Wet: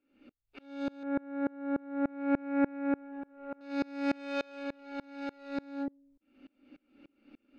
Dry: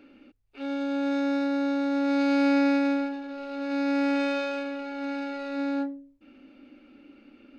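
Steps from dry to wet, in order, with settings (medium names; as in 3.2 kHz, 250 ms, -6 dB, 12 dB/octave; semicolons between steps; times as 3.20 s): 1.03–3.61 s: low-pass 2 kHz 24 dB/octave; sawtooth tremolo in dB swelling 3.4 Hz, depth 29 dB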